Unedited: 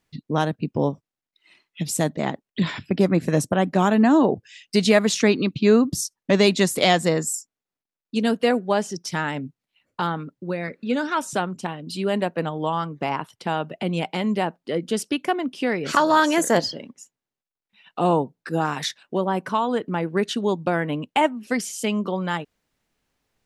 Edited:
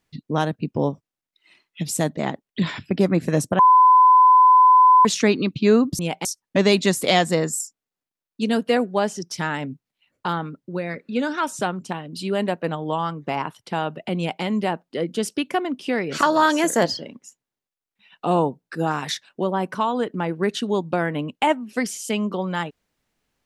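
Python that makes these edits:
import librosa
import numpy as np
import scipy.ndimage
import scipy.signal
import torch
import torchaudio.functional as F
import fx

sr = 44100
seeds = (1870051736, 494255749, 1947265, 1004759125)

y = fx.edit(x, sr, fx.bleep(start_s=3.59, length_s=1.46, hz=1010.0, db=-9.0),
    fx.duplicate(start_s=13.91, length_s=0.26, to_s=5.99), tone=tone)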